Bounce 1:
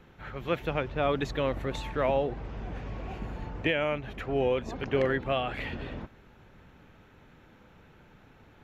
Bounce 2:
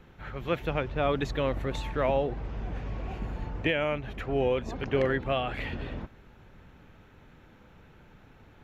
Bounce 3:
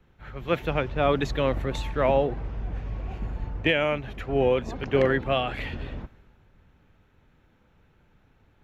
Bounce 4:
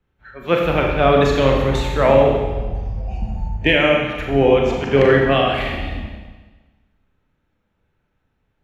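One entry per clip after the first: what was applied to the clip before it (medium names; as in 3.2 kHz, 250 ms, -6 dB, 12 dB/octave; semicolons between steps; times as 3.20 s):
bass shelf 90 Hz +5 dB
three bands expanded up and down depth 40%; trim +3.5 dB
spectral noise reduction 17 dB; Schroeder reverb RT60 1.3 s, combs from 29 ms, DRR 0 dB; trim +6.5 dB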